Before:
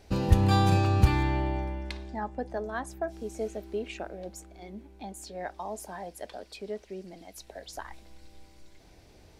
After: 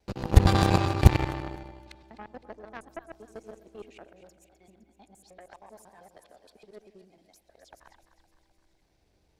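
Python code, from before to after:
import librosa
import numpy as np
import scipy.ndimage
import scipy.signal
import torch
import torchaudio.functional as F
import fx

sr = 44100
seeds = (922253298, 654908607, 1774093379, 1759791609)

y = fx.local_reverse(x, sr, ms=78.0)
y = fx.echo_split(y, sr, split_hz=630.0, low_ms=86, high_ms=256, feedback_pct=52, wet_db=-10.0)
y = fx.cheby_harmonics(y, sr, harmonics=(6, 7, 8), levels_db=(-19, -18, -22), full_scale_db=-6.0)
y = F.gain(torch.from_numpy(y), 4.0).numpy()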